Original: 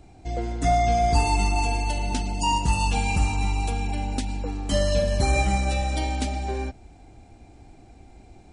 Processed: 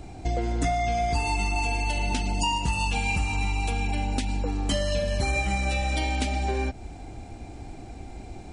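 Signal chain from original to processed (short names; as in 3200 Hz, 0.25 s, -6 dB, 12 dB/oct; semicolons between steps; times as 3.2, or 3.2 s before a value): dynamic EQ 2500 Hz, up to +6 dB, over -43 dBFS, Q 1.2; compressor 6:1, threshold -32 dBFS, peak gain reduction 16 dB; gain +8.5 dB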